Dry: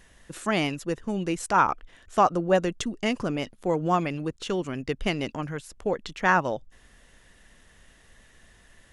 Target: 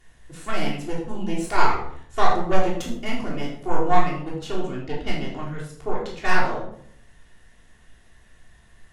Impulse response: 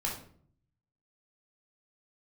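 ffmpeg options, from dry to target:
-filter_complex "[0:a]asettb=1/sr,asplit=3[a][b][c];[a]atrim=end=4.704[d];[b]atrim=start=4.7:end=5.28,asetpts=PTS-STARTPTS,afade=t=in:d=0.004:c=qsin,afade=t=out:st=0.576:d=0.004:c=qsin,lowpass=5.7k[e];[c]atrim=start=5.276[f];[d][e]acrossfade=d=0.004:c1=hsin:c2=qsin[g];[g][f]acrossfade=d=0.004:c1=qsin:c2=hsin,aeval=exprs='0.447*(cos(1*acos(clip(val(0)/0.447,-1,1)))-cos(1*PI/2))+0.0794*(cos(6*acos(clip(val(0)/0.447,-1,1)))-cos(6*PI/2))':c=same,asettb=1/sr,asplit=3[h][i][j];[h]atrim=end=3.394[k];[i]atrim=start=3.39:end=4.01,asetpts=PTS-STARTPTS,afade=t=in:d=0.004:c=qsin,afade=t=out:st=0.616:d=0.004:c=qsin,asplit=2[l][m];[m]adelay=21,volume=-4dB[n];[l][n]amix=inputs=2:normalize=0,atrim=end_sample=27342[o];[j]atrim=start=4.006[p];[k][o]acrossfade=d=0.004:c1=hsin:c2=qsin[q];[q][p]acrossfade=d=0.004:c1=qsin:c2=hsin[r];[1:a]atrim=start_sample=2205,asetrate=35721,aresample=44100[s];[r][s]afir=irnorm=-1:irlink=0,volume=-6.5dB"

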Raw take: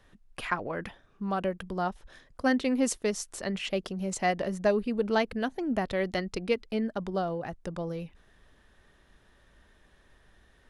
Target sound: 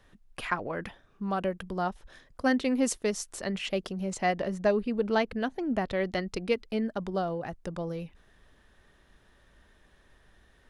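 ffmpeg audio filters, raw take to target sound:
-filter_complex "[0:a]asettb=1/sr,asplit=3[a][b][c];[a]atrim=end=4.014[d];[b]atrim=start=4.01:end=6.26,asetpts=PTS-STARTPTS,afade=t=in:d=0.004:c=qsin,afade=t=out:st=2.246:d=0.004:c=qsin,highshelf=f=8.6k:g=-9.5[e];[c]atrim=start=6.256[f];[d][e]acrossfade=d=0.004:c1=hsin:c2=qsin[g];[g][f]acrossfade=d=0.004:c1=qsin:c2=hsin"

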